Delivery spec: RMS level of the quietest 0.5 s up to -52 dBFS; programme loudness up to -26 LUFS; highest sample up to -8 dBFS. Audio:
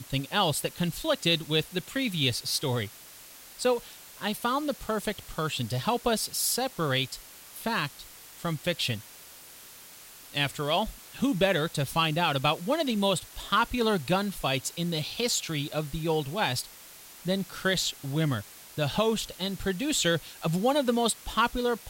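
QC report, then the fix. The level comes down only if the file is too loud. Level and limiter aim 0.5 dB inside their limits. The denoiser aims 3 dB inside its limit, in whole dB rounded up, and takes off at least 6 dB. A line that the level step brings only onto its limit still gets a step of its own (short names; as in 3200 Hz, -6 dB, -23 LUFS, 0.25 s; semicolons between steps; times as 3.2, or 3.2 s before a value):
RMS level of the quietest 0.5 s -49 dBFS: fail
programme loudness -28.5 LUFS: OK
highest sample -12.0 dBFS: OK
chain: denoiser 6 dB, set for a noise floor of -49 dBFS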